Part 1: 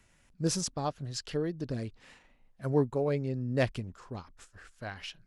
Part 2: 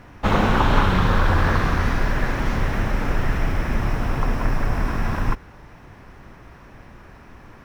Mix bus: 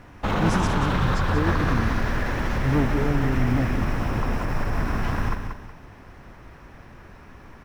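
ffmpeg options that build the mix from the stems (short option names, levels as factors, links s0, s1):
-filter_complex "[0:a]lowshelf=f=440:t=q:w=1.5:g=13,asoftclip=type=hard:threshold=0.224,volume=0.531,asplit=2[s0][s1];[s1]volume=0.376[s2];[1:a]alimiter=limit=0.224:level=0:latency=1:release=36,volume=0.794,asplit=2[s3][s4];[s4]volume=0.447[s5];[s2][s5]amix=inputs=2:normalize=0,aecho=0:1:185|370|555|740|925:1|0.32|0.102|0.0328|0.0105[s6];[s0][s3][s6]amix=inputs=3:normalize=0"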